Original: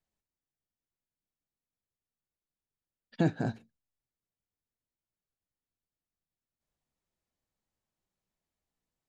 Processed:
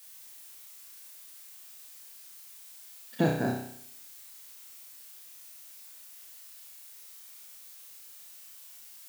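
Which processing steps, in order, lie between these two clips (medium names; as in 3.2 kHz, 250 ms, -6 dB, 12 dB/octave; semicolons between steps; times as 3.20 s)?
high-pass 170 Hz 6 dB/octave; added noise blue -56 dBFS; flutter echo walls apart 5.5 m, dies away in 0.64 s; trim +3 dB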